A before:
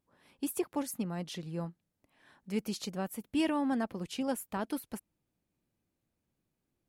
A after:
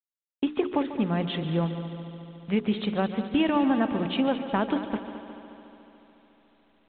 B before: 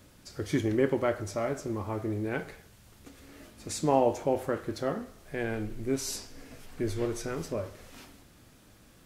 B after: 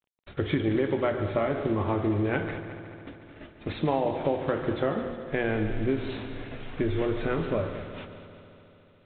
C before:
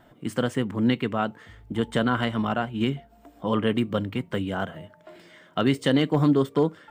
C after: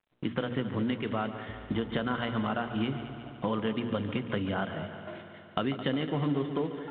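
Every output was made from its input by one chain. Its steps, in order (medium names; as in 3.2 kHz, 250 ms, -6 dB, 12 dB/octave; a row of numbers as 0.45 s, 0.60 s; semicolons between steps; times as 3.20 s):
block-companded coder 5-bit; gate -48 dBFS, range -46 dB; hum notches 60/120/180/240/300/360/420/480 Hz; compression 6:1, threshold -32 dBFS; on a send: multi-head delay 72 ms, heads second and third, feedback 67%, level -13 dB; on the sum: µ-law 64 kbps 8 kHz; peak normalisation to -12 dBFS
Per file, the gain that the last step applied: +12.0 dB, +9.0 dB, +4.0 dB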